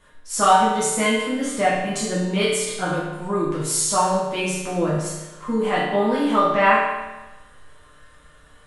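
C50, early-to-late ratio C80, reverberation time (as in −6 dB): 0.0 dB, 2.5 dB, 1.1 s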